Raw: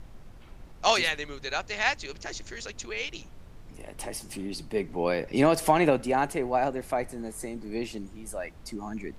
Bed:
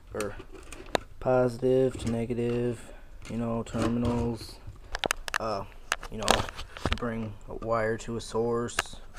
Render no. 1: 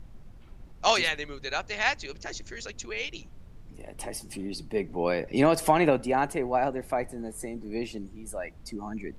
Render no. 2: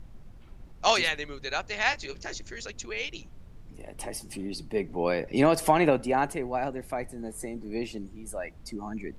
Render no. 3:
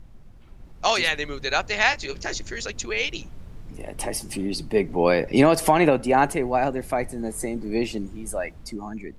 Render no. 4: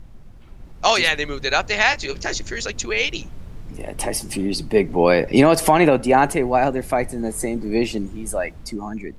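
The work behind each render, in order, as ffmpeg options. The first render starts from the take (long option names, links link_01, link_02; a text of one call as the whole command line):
ffmpeg -i in.wav -af "afftdn=noise_reduction=6:noise_floor=-48" out.wav
ffmpeg -i in.wav -filter_complex "[0:a]asettb=1/sr,asplit=3[link_01][link_02][link_03];[link_01]atrim=end=1.894[link_04];[link_02]atrim=start=1.89:end=2.34,asetpts=PTS-STARTPTS,afade=type=in:duration=0.004:curve=qsin,afade=type=out:start_time=0.446:duration=0.004:curve=qsin,asplit=2[link_05][link_06];[link_06]adelay=22,volume=-9dB[link_07];[link_05][link_07]amix=inputs=2:normalize=0,atrim=end_sample=19845[link_08];[link_03]atrim=start=2.336[link_09];[link_04][link_08]acrossfade=duration=0.004:curve1=hsin:curve2=qsin[link_10];[link_10][link_09]acrossfade=duration=0.004:curve1=qsin:curve2=hsin,asettb=1/sr,asplit=3[link_11][link_12][link_13];[link_11]atrim=end=6.344[link_14];[link_12]atrim=start=6.34:end=7.23,asetpts=PTS-STARTPTS,afade=type=in:duration=0.004:curve=qsin,afade=type=out:start_time=0.886:duration=0.004:curve=qsin,equalizer=frequency=730:width_type=o:width=2.7:gain=-4.5[link_15];[link_13]atrim=start=7.226[link_16];[link_14][link_15]acrossfade=duration=0.004:curve1=hsin:curve2=qsin[link_17];[link_17][link_16]acrossfade=duration=0.004:curve1=qsin:curve2=hsin" out.wav
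ffmpeg -i in.wav -af "alimiter=limit=-13dB:level=0:latency=1:release=357,dynaudnorm=framelen=190:gausssize=9:maxgain=8dB" out.wav
ffmpeg -i in.wav -af "volume=4.5dB,alimiter=limit=-3dB:level=0:latency=1" out.wav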